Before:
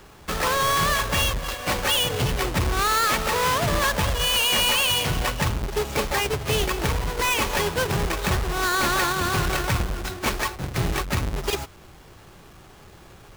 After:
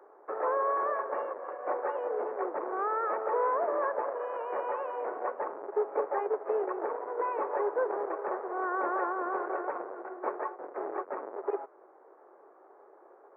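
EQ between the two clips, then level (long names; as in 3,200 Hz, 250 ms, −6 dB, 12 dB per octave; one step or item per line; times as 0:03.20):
Gaussian smoothing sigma 8 samples
Butterworth high-pass 390 Hz 36 dB per octave
0.0 dB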